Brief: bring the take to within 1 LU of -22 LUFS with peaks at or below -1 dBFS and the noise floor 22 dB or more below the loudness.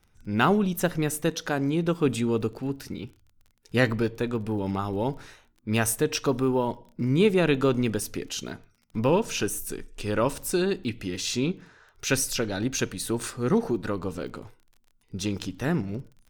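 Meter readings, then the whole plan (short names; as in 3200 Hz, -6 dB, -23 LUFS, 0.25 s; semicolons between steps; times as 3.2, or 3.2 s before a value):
ticks 23/s; loudness -27.0 LUFS; peak -8.5 dBFS; loudness target -22.0 LUFS
-> de-click; gain +5 dB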